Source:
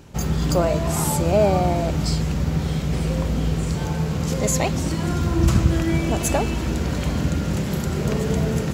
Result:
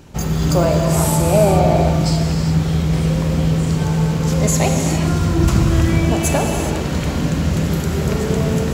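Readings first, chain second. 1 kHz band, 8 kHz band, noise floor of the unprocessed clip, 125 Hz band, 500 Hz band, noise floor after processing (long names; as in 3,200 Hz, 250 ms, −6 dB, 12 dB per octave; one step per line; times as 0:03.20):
+4.5 dB, +4.5 dB, −25 dBFS, +5.5 dB, +4.5 dB, −21 dBFS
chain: reverb whose tail is shaped and stops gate 440 ms flat, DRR 2.5 dB
level +2.5 dB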